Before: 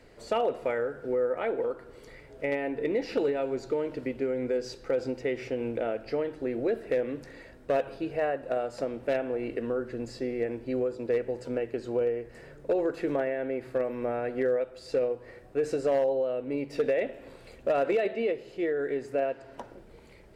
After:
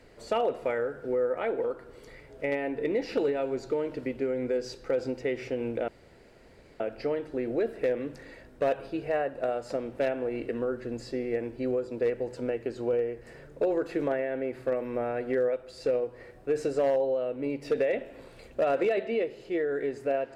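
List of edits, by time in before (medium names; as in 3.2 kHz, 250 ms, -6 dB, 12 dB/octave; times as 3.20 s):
5.88 s: insert room tone 0.92 s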